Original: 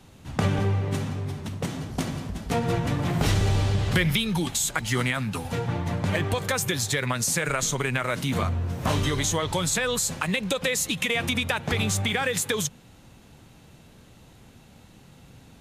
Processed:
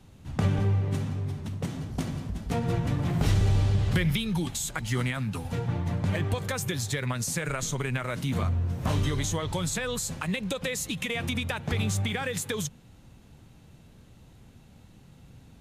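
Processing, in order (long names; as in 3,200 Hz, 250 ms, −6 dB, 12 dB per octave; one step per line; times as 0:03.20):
low-shelf EQ 220 Hz +8 dB
level −6.5 dB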